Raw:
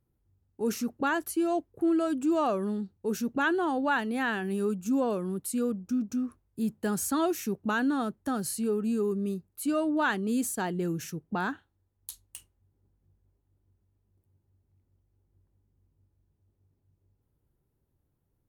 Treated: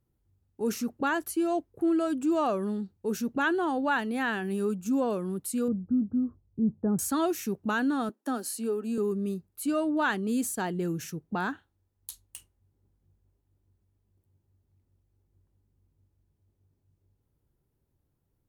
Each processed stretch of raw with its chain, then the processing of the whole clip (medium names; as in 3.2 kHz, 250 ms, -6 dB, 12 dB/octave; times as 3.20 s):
5.68–6.99 s: Gaussian low-pass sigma 8.6 samples + peaking EQ 100 Hz +8.5 dB 2.1 oct
8.09–8.98 s: Chebyshev high-pass 240 Hz, order 4 + band-stop 2.1 kHz, Q 15
whole clip: none